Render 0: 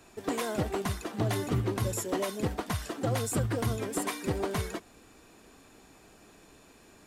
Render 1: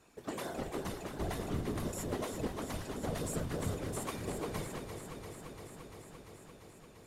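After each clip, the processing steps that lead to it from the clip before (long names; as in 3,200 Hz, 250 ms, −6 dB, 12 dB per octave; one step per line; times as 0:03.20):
random phases in short frames
delay that swaps between a low-pass and a high-pass 172 ms, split 820 Hz, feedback 88%, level −6.5 dB
level −8.5 dB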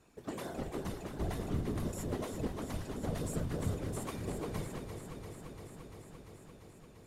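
low-shelf EQ 330 Hz +6.5 dB
level −3.5 dB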